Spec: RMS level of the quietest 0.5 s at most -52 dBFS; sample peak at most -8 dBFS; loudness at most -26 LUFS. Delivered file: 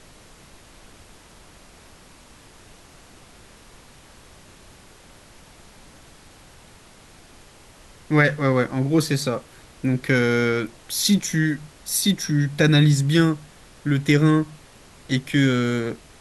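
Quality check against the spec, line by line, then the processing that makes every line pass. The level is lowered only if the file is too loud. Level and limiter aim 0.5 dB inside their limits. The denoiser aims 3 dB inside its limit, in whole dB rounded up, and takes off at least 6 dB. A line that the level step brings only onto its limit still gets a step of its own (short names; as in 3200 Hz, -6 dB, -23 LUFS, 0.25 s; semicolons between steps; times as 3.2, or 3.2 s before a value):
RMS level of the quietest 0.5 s -49 dBFS: fail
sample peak -4.0 dBFS: fail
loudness -21.0 LUFS: fail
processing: gain -5.5 dB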